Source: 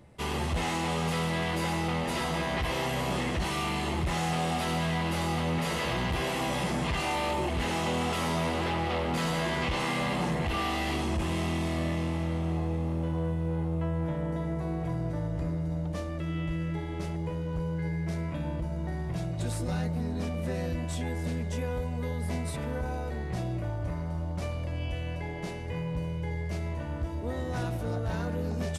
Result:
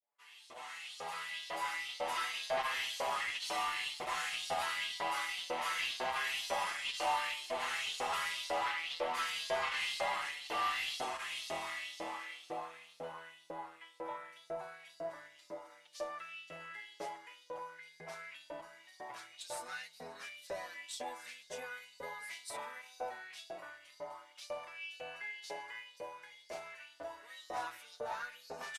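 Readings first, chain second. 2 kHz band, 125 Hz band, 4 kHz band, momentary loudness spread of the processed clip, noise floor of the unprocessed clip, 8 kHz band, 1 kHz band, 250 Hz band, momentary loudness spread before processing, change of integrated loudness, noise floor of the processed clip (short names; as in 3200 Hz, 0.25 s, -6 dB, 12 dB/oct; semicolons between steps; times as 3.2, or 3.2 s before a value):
-3.5 dB, -36.5 dB, -3.0 dB, 14 LU, -34 dBFS, -5.0 dB, -5.0 dB, -26.0 dB, 5 LU, -8.0 dB, -62 dBFS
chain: opening faded in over 2.36 s; LFO high-pass saw up 2 Hz 540–5100 Hz; added harmonics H 5 -24 dB, 6 -31 dB, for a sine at -15.5 dBFS; endless flanger 6.6 ms +0.58 Hz; gain -4.5 dB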